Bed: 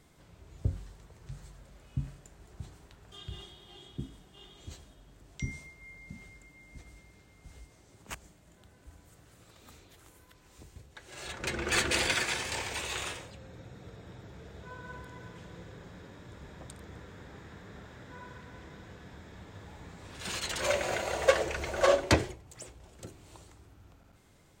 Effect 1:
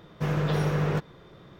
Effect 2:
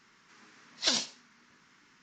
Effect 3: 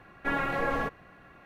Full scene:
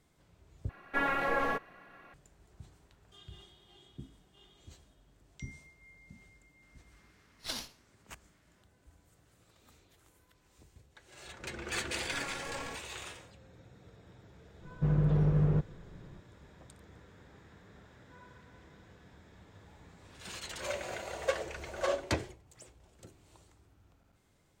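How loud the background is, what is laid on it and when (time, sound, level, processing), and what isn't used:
bed -8 dB
0.69 replace with 3 -0.5 dB + bell 74 Hz -11 dB 2.8 oct
6.62 add 2 -10 dB + running maximum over 3 samples
11.87 add 3 -13.5 dB
14.61 add 1 -12.5 dB + tilt -4.5 dB/oct

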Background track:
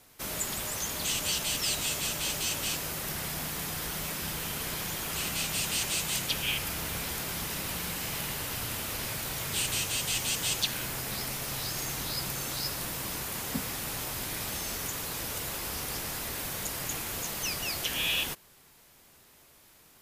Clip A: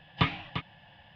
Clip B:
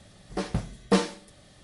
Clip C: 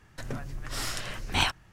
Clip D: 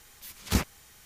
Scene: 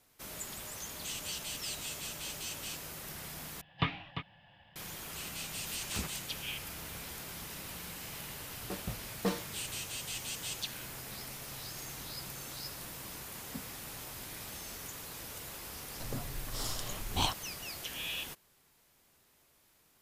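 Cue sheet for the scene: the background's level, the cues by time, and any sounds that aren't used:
background track -9.5 dB
3.61 replace with A -5.5 dB
5.44 add D -1 dB + compressor 2.5:1, threshold -38 dBFS
8.33 add B -11 dB
15.82 add C -4 dB + band shelf 1900 Hz -10.5 dB 1.1 oct

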